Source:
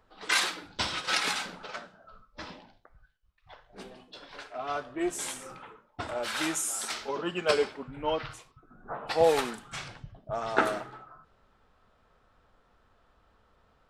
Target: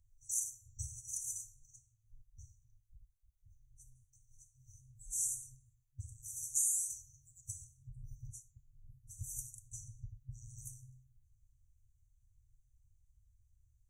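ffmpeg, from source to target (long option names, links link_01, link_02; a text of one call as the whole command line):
ffmpeg -i in.wav -filter_complex "[0:a]asettb=1/sr,asplit=3[link_01][link_02][link_03];[link_01]atrim=end=4.924[link_04];[link_02]atrim=start=4.92:end=5.35,asetpts=PTS-STARTPTS,afade=type=in:duration=0.004:curve=qsin,afade=type=out:start_time=0.426:duration=0.004:curve=qsin,asplit=2[link_05][link_06];[link_06]adelay=29,volume=-3dB[link_07];[link_05][link_07]amix=inputs=2:normalize=0,atrim=end_sample=18963[link_08];[link_03]atrim=start=5.346[link_09];[link_04][link_08]acrossfade=duration=0.004:curve1=hsin:curve2=qsin[link_10];[link_10][link_09]acrossfade=duration=0.004:curve1=qsin:curve2=hsin,afftfilt=real='re*(1-between(b*sr/4096,130,5800))':imag='im*(1-between(b*sr/4096,130,5800))':win_size=4096:overlap=0.75,bandreject=frequency=329.1:width_type=h:width=4,bandreject=frequency=658.2:width_type=h:width=4,bandreject=frequency=987.3:width_type=h:width=4,bandreject=frequency=1316.4:width_type=h:width=4,bandreject=frequency=1645.5:width_type=h:width=4,bandreject=frequency=1974.6:width_type=h:width=4,bandreject=frequency=2303.7:width_type=h:width=4,bandreject=frequency=2632.8:width_type=h:width=4,bandreject=frequency=2961.9:width_type=h:width=4,bandreject=frequency=3291:width_type=h:width=4,bandreject=frequency=3620.1:width_type=h:width=4,bandreject=frequency=3949.2:width_type=h:width=4,bandreject=frequency=4278.3:width_type=h:width=4,bandreject=frequency=4607.4:width_type=h:width=4,bandreject=frequency=4936.5:width_type=h:width=4,bandreject=frequency=5265.6:width_type=h:width=4,bandreject=frequency=5594.7:width_type=h:width=4,bandreject=frequency=5923.8:width_type=h:width=4,bandreject=frequency=6252.9:width_type=h:width=4,bandreject=frequency=6582:width_type=h:width=4,bandreject=frequency=6911.1:width_type=h:width=4,bandreject=frequency=7240.2:width_type=h:width=4,bandreject=frequency=7569.3:width_type=h:width=4" out.wav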